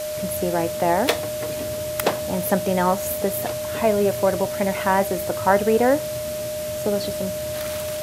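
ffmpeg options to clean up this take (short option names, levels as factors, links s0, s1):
-af "adeclick=t=4,bandreject=f=610:w=30,afwtdn=0.018"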